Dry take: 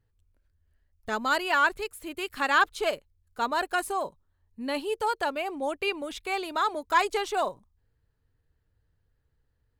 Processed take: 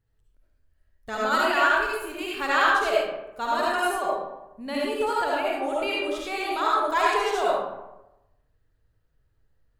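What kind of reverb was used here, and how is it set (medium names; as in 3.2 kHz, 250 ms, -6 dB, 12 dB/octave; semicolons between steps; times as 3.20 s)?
algorithmic reverb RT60 0.95 s, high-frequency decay 0.55×, pre-delay 30 ms, DRR -5.5 dB; trim -3 dB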